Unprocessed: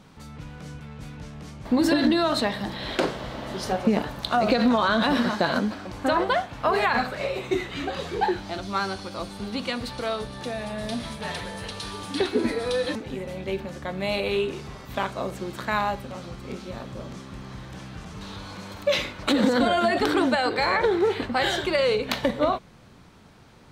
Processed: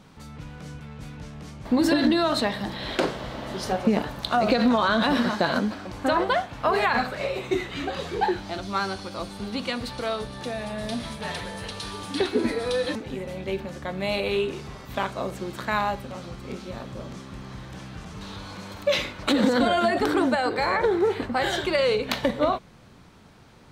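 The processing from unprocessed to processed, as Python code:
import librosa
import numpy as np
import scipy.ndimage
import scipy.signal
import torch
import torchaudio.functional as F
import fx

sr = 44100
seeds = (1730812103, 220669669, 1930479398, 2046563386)

y = fx.peak_eq(x, sr, hz=3400.0, db=-5.0, octaves=1.5, at=(19.9, 21.53))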